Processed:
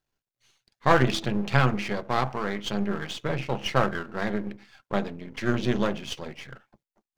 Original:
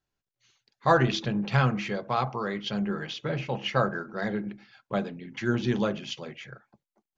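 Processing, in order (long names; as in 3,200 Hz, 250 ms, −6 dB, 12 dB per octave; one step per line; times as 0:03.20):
gain on one half-wave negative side −12 dB
level +4.5 dB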